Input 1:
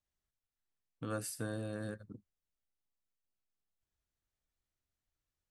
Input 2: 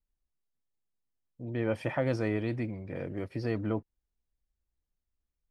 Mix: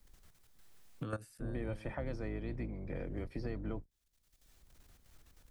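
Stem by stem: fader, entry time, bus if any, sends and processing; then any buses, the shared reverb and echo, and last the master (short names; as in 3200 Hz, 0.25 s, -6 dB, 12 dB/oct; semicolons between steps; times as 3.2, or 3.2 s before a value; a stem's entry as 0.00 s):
-2.5 dB, 0.00 s, no send, level quantiser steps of 18 dB
-10.5 dB, 0.00 s, no send, octaver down 2 oct, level +2 dB; notch 2800 Hz, Q 10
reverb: off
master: three-band squash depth 100%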